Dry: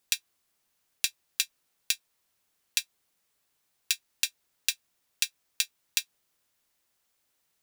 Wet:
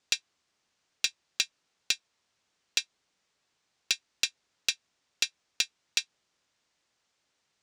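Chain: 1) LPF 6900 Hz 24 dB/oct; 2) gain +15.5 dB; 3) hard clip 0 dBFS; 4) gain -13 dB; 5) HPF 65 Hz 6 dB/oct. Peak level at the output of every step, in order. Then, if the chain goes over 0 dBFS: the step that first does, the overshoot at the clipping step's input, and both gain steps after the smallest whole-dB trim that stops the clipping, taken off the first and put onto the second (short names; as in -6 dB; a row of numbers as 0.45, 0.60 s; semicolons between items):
-6.5, +9.0, 0.0, -13.0, -13.0 dBFS; step 2, 9.0 dB; step 2 +6.5 dB, step 4 -4 dB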